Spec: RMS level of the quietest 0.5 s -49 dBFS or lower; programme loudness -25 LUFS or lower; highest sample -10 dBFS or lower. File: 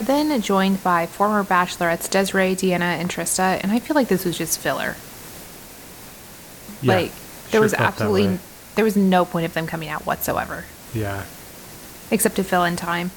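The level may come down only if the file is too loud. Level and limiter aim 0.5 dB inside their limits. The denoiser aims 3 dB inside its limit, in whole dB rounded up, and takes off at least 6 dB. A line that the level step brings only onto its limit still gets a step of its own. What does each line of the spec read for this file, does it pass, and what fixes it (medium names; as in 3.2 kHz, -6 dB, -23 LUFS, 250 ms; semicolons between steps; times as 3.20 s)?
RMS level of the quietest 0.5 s -41 dBFS: fail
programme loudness -20.5 LUFS: fail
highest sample -3.5 dBFS: fail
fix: noise reduction 6 dB, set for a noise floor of -41 dBFS; trim -5 dB; peak limiter -10.5 dBFS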